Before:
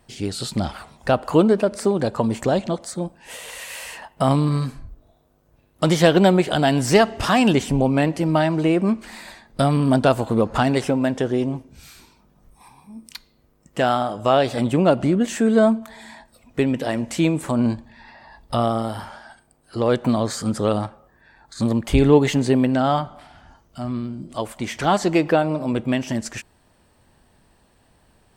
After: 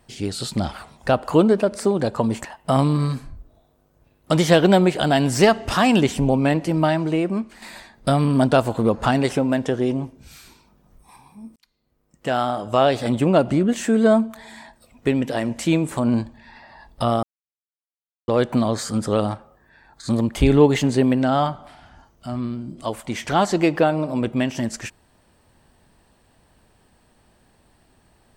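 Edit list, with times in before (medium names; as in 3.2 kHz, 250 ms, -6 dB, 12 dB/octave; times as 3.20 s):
2.45–3.97 s: delete
8.32–9.14 s: fade out, to -7.5 dB
13.08–14.14 s: fade in
18.75–19.80 s: mute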